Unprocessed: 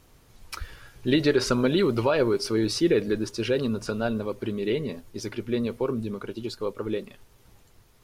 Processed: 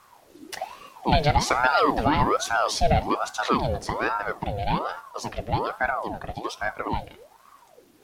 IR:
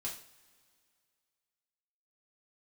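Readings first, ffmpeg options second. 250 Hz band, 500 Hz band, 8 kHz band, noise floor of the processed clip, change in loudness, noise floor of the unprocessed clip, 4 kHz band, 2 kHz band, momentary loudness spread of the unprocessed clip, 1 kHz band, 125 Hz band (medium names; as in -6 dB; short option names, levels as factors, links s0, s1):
-5.0 dB, -2.5 dB, +3.5 dB, -56 dBFS, +1.5 dB, -58 dBFS, +1.0 dB, +7.0 dB, 13 LU, +14.5 dB, +2.5 dB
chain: -filter_complex "[0:a]asplit=2[s0][s1];[1:a]atrim=start_sample=2205[s2];[s1][s2]afir=irnorm=-1:irlink=0,volume=0.266[s3];[s0][s3]amix=inputs=2:normalize=0,aeval=exprs='val(0)*sin(2*PI*720*n/s+720*0.6/1.2*sin(2*PI*1.2*n/s))':c=same,volume=1.41"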